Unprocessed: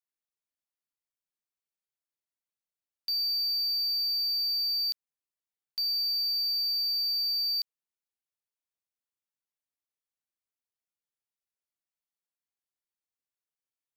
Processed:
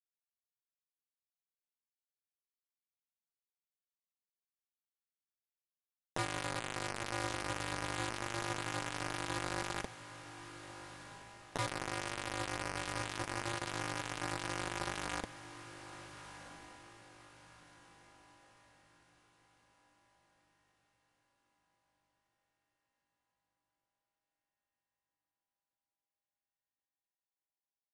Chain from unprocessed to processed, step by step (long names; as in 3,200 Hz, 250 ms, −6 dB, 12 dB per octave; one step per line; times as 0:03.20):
spectral envelope flattened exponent 0.3
treble cut that deepens with the level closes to 1,200 Hz, closed at −28.5 dBFS
elliptic low-pass filter 2,000 Hz, stop band 80 dB
comb filter 5.8 ms, depth 32%
log-companded quantiser 2 bits
flanger 0.39 Hz, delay 1.8 ms, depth 3.4 ms, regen −38%
wrong playback speed 15 ips tape played at 7.5 ips
feedback delay with all-pass diffusion 1,374 ms, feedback 41%, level −12 dB
level +4.5 dB